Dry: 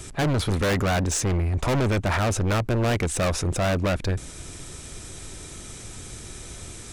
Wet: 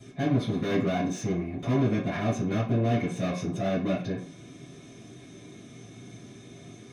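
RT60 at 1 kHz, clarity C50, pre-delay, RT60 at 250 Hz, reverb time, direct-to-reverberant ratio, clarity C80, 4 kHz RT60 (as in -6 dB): 0.45 s, 5.5 dB, 3 ms, 0.35 s, 0.45 s, -12.0 dB, 11.5 dB, 0.45 s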